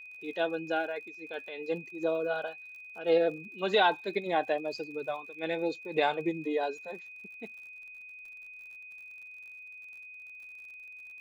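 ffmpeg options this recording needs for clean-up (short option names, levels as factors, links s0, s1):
-af "adeclick=t=4,bandreject=f=2500:w=30"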